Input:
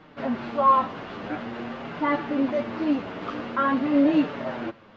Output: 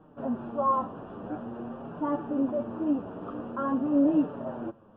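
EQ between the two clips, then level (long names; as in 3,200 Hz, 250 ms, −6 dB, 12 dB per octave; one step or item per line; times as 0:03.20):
moving average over 21 samples
high-frequency loss of the air 200 metres
−2.5 dB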